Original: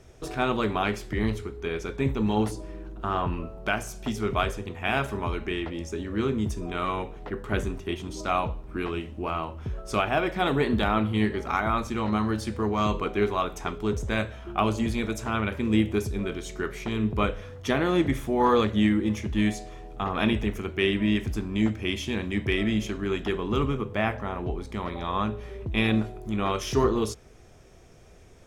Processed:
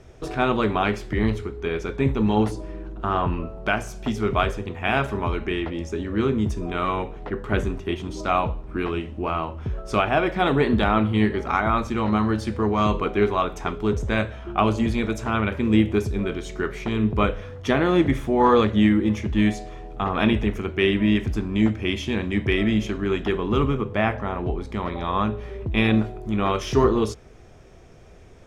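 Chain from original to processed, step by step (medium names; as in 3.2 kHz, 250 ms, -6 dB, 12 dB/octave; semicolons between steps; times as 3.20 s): low-pass 3.7 kHz 6 dB/octave; trim +4.5 dB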